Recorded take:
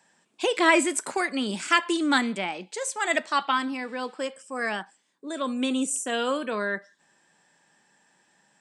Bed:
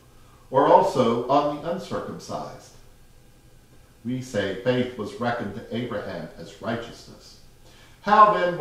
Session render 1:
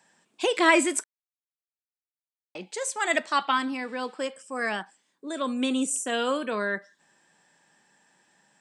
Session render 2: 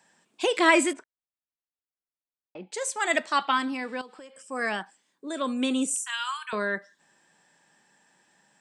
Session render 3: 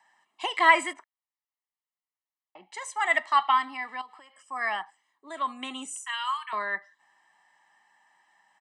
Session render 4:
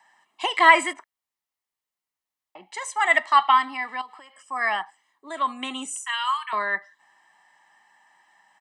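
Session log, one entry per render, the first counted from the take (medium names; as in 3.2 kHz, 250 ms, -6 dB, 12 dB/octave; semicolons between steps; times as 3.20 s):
1.04–2.55 s: mute
0.93–2.72 s: tape spacing loss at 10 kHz 37 dB; 4.01–4.47 s: compression, threshold -43 dBFS; 5.94–6.53 s: steep high-pass 850 Hz 96 dB/octave
three-band isolator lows -23 dB, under 480 Hz, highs -12 dB, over 2.8 kHz; comb 1 ms, depth 82%
trim +5 dB; peak limiter -2 dBFS, peak gain reduction 1 dB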